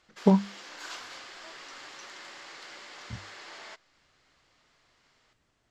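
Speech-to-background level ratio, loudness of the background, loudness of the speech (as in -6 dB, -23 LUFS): 19.5 dB, -44.0 LUFS, -24.5 LUFS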